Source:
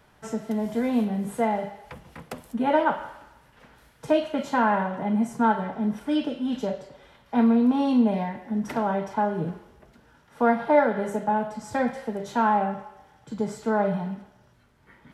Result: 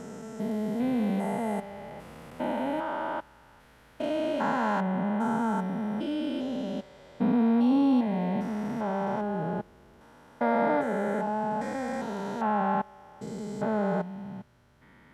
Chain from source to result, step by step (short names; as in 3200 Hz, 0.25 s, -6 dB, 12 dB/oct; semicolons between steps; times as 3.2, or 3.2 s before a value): stepped spectrum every 0.4 s